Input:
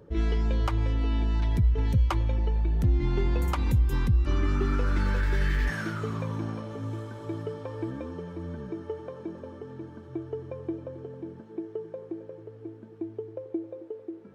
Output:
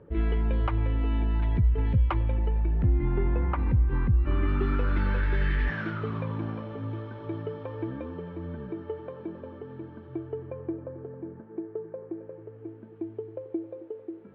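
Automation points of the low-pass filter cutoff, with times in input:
low-pass filter 24 dB per octave
0:02.54 2,800 Hz
0:03.12 2,100 Hz
0:04.08 2,100 Hz
0:04.63 3,400 Hz
0:10.12 3,400 Hz
0:10.82 2,000 Hz
0:12.00 2,000 Hz
0:13.02 3,200 Hz

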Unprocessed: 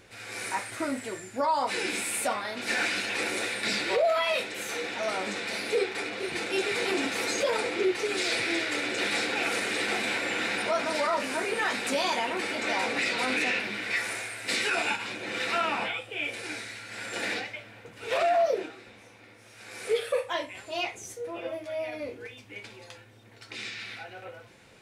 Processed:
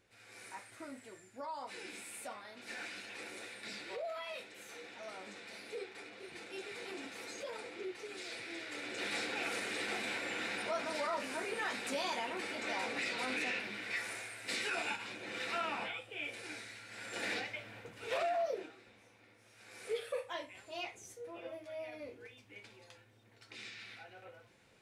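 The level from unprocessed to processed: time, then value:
0:08.50 −17 dB
0:09.13 −9.5 dB
0:17.00 −9.5 dB
0:17.76 −2 dB
0:18.33 −11 dB

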